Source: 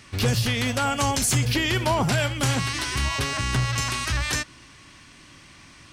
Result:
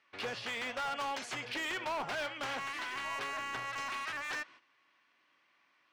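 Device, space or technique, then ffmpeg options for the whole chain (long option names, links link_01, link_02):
walkie-talkie: -af "highpass=580,lowpass=2600,asoftclip=type=hard:threshold=-27dB,agate=range=-12dB:threshold=-49dB:ratio=16:detection=peak,volume=-6dB"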